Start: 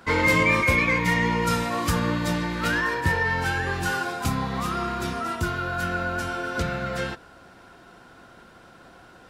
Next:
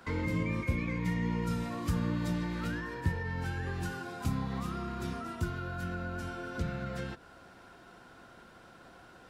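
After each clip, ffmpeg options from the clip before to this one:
-filter_complex "[0:a]acrossover=split=330[a][b];[b]acompressor=threshold=-36dB:ratio=5[c];[a][c]amix=inputs=2:normalize=0,volume=-5dB"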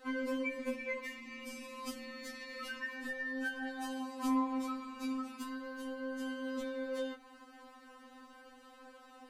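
-af "afftfilt=real='re*3.46*eq(mod(b,12),0)':imag='im*3.46*eq(mod(b,12),0)':win_size=2048:overlap=0.75,volume=1dB"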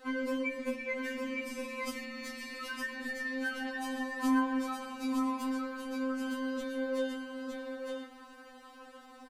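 -af "aecho=1:1:912:0.631,volume=2.5dB"

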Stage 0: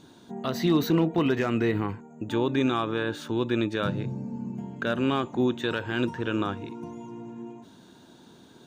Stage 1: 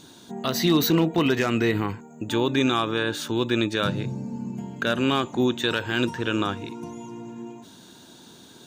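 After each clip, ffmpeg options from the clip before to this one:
-af "highshelf=f=2.9k:g=11,volume=2dB"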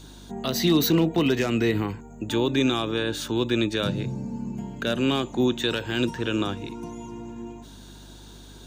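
-filter_complex "[0:a]acrossover=split=250|870|1900[a][b][c][d];[c]acompressor=threshold=-42dB:ratio=6[e];[a][b][e][d]amix=inputs=4:normalize=0,aeval=exprs='val(0)+0.00501*(sin(2*PI*50*n/s)+sin(2*PI*2*50*n/s)/2+sin(2*PI*3*50*n/s)/3+sin(2*PI*4*50*n/s)/4+sin(2*PI*5*50*n/s)/5)':c=same"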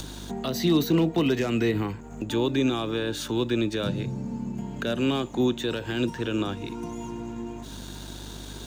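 -filter_complex "[0:a]acrossover=split=140|920[a][b][c];[c]alimiter=limit=-22.5dB:level=0:latency=1:release=109[d];[a][b][d]amix=inputs=3:normalize=0,aeval=exprs='sgn(val(0))*max(abs(val(0))-0.002,0)':c=same,acompressor=mode=upward:threshold=-26dB:ratio=2.5,volume=-1dB"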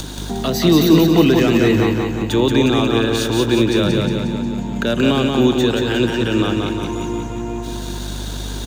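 -af "aecho=1:1:179|358|537|716|895|1074|1253|1432:0.668|0.381|0.217|0.124|0.0706|0.0402|0.0229|0.0131,volume=8.5dB"

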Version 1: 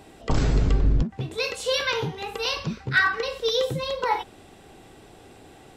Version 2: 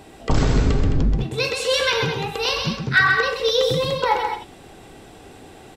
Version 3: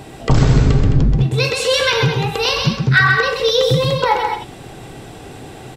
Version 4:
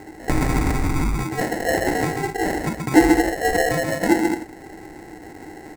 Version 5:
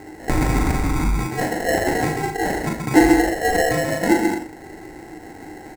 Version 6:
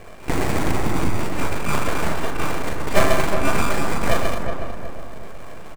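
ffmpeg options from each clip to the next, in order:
-af "aecho=1:1:130|213:0.531|0.335,volume=4dB"
-filter_complex "[0:a]equalizer=f=130:t=o:w=0.47:g=9.5,asplit=2[a][b];[b]acompressor=threshold=-26dB:ratio=6,volume=0dB[c];[a][c]amix=inputs=2:normalize=0,volume=1.5dB"
-af "adynamicsmooth=sensitivity=1:basefreq=3.4k,acrusher=samples=37:mix=1:aa=0.000001,equalizer=f=125:t=o:w=0.33:g=-11,equalizer=f=315:t=o:w=0.33:g=12,equalizer=f=800:t=o:w=0.33:g=8,equalizer=f=2k:t=o:w=0.33:g=11,equalizer=f=3.15k:t=o:w=0.33:g=-10,equalizer=f=8k:t=o:w=0.33:g=6,volume=-7.5dB"
-filter_complex "[0:a]asplit=2[a][b];[b]adelay=39,volume=-5.5dB[c];[a][c]amix=inputs=2:normalize=0"
-filter_complex "[0:a]aeval=exprs='abs(val(0))':c=same,asplit=2[a][b];[b]adelay=366,lowpass=f=1.3k:p=1,volume=-5dB,asplit=2[c][d];[d]adelay=366,lowpass=f=1.3k:p=1,volume=0.46,asplit=2[e][f];[f]adelay=366,lowpass=f=1.3k:p=1,volume=0.46,asplit=2[g][h];[h]adelay=366,lowpass=f=1.3k:p=1,volume=0.46,asplit=2[i][j];[j]adelay=366,lowpass=f=1.3k:p=1,volume=0.46,asplit=2[k][l];[l]adelay=366,lowpass=f=1.3k:p=1,volume=0.46[m];[a][c][e][g][i][k][m]amix=inputs=7:normalize=0"

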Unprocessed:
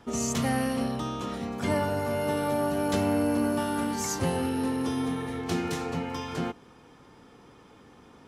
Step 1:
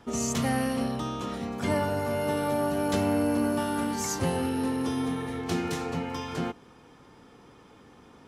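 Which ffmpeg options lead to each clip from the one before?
-af anull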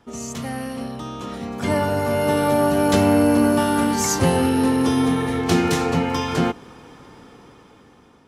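-af "dynaudnorm=f=480:g=7:m=16.5dB,volume=-2.5dB"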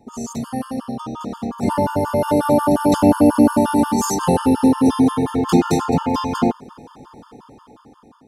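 -af "equalizer=f=250:t=o:w=1:g=5,equalizer=f=1k:t=o:w=1:g=8,equalizer=f=2k:t=o:w=1:g=-10,afftfilt=real='re*gt(sin(2*PI*5.6*pts/sr)*(1-2*mod(floor(b*sr/1024/900),2)),0)':imag='im*gt(sin(2*PI*5.6*pts/sr)*(1-2*mod(floor(b*sr/1024/900),2)),0)':win_size=1024:overlap=0.75,volume=2dB"

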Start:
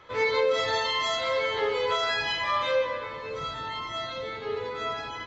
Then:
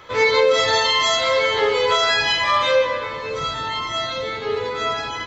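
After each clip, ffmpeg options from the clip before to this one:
-af "highshelf=f=6.2k:g=10.5,volume=8dB"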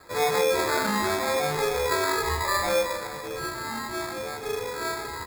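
-af "acrusher=samples=15:mix=1:aa=0.000001,volume=-7dB"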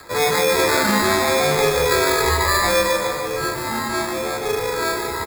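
-filter_complex "[0:a]acrossover=split=440|1300[a][b][c];[b]alimiter=level_in=3.5dB:limit=-24dB:level=0:latency=1,volume=-3.5dB[d];[c]acompressor=mode=upward:threshold=-51dB:ratio=2.5[e];[a][d][e]amix=inputs=3:normalize=0,aecho=1:1:148|296|444|592|740|888|1036:0.473|0.256|0.138|0.0745|0.0402|0.0217|0.0117,volume=8dB"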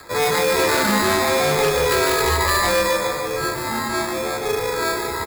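-af "aeval=exprs='0.282*(abs(mod(val(0)/0.282+3,4)-2)-1)':c=same"

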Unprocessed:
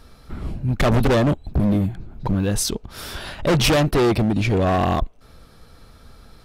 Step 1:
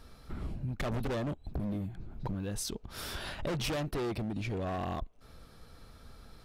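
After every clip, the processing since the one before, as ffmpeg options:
-af "acompressor=threshold=-27dB:ratio=6,volume=-6.5dB"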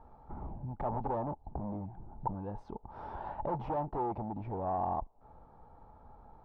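-af "lowpass=f=870:t=q:w=9.2,volume=-5dB"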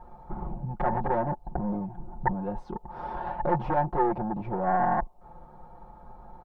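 -af "aeval=exprs='0.0944*(cos(1*acos(clip(val(0)/0.0944,-1,1)))-cos(1*PI/2))+0.0376*(cos(2*acos(clip(val(0)/0.0944,-1,1)))-cos(2*PI/2))':c=same,aecho=1:1:5.6:0.89,volume=5.5dB"

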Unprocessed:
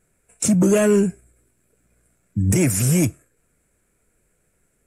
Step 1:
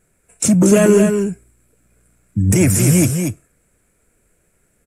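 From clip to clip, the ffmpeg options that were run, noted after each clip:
-af "aecho=1:1:233:0.501,volume=4dB"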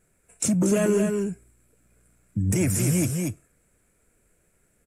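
-af "acompressor=threshold=-24dB:ratio=1.5,volume=-4.5dB"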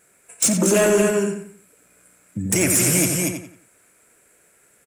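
-filter_complex "[0:a]highpass=f=680:p=1,aeval=exprs='0.266*sin(PI/2*2.51*val(0)/0.266)':c=same,asplit=2[a][b];[b]adelay=89,lowpass=f=4.7k:p=1,volume=-6dB,asplit=2[c][d];[d]adelay=89,lowpass=f=4.7k:p=1,volume=0.35,asplit=2[e][f];[f]adelay=89,lowpass=f=4.7k:p=1,volume=0.35,asplit=2[g][h];[h]adelay=89,lowpass=f=4.7k:p=1,volume=0.35[i];[c][e][g][i]amix=inputs=4:normalize=0[j];[a][j]amix=inputs=2:normalize=0"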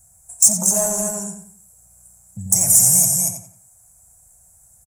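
-filter_complex "[0:a]firequalizer=gain_entry='entry(100,0);entry(210,-7);entry(300,-27);entry(740,4);entry(1300,-13);entry(2800,-23);entry(6100,8)':delay=0.05:min_phase=1,acrossover=split=110|2800[a][b][c];[a]acompressor=mode=upward:threshold=-44dB:ratio=2.5[d];[d][b][c]amix=inputs=3:normalize=0,volume=-1dB"

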